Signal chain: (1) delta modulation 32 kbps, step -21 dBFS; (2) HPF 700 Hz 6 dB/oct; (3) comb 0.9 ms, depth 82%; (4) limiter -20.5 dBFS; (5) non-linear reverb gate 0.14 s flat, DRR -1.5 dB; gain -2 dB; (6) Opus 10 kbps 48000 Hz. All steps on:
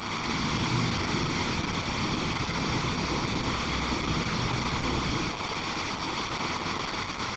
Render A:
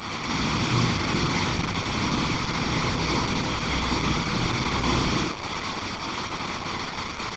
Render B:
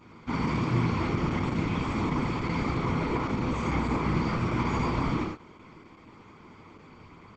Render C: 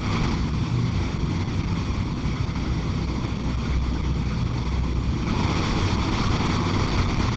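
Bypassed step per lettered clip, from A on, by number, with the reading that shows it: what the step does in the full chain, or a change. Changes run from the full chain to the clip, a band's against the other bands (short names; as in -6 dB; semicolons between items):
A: 4, mean gain reduction 2.5 dB; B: 1, 8 kHz band -13.5 dB; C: 2, 125 Hz band +11.0 dB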